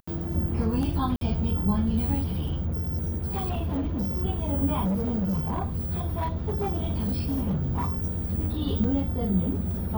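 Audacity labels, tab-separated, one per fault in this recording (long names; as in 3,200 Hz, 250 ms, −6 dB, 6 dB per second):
1.160000	1.210000	drop-out 52 ms
2.210000	4.230000	clipping −24 dBFS
4.840000	8.350000	clipping −23 dBFS
8.840000	8.840000	drop-out 4.1 ms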